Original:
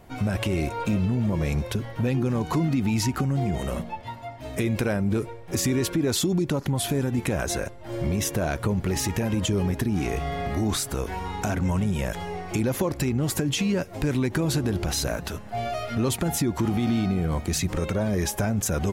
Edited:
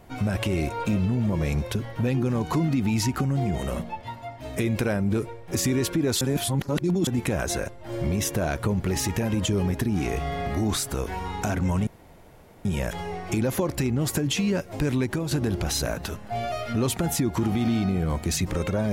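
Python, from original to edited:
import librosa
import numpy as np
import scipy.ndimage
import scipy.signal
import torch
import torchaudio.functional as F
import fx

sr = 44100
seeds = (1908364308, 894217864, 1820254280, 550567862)

y = fx.edit(x, sr, fx.reverse_span(start_s=6.21, length_s=0.86),
    fx.insert_room_tone(at_s=11.87, length_s=0.78),
    fx.fade_out_to(start_s=14.23, length_s=0.3, floor_db=-6.5), tone=tone)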